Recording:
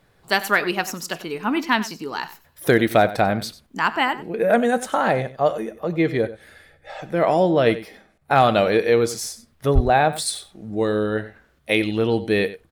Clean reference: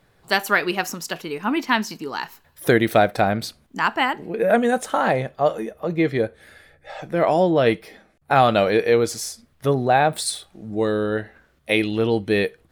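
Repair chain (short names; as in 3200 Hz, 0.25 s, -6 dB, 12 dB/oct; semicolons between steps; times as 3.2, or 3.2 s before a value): clip repair -5 dBFS; 9.74–9.86 HPF 140 Hz 24 dB/oct; inverse comb 94 ms -15.5 dB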